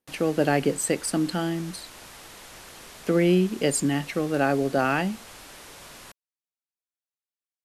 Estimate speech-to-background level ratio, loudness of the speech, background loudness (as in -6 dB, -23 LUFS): 19.0 dB, -24.5 LUFS, -43.5 LUFS